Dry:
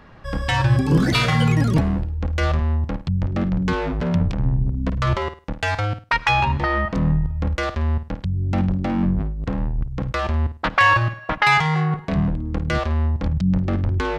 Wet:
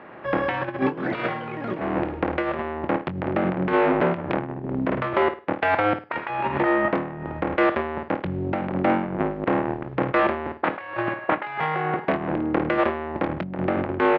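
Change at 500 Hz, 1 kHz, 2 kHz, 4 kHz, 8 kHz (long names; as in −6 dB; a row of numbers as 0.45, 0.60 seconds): +5.5 dB, −1.0 dB, −4.5 dB, −11.5 dB, below −30 dB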